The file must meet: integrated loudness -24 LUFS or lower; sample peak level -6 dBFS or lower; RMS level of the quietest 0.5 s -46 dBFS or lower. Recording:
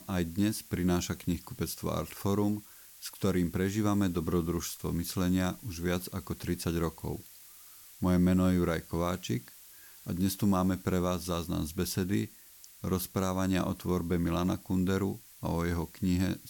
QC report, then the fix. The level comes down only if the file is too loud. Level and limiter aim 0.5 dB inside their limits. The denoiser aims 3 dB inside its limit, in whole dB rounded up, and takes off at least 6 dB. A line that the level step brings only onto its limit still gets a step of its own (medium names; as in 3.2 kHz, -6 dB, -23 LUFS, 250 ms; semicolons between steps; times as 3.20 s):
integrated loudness -31.5 LUFS: pass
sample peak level -17.0 dBFS: pass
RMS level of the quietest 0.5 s -54 dBFS: pass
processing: none needed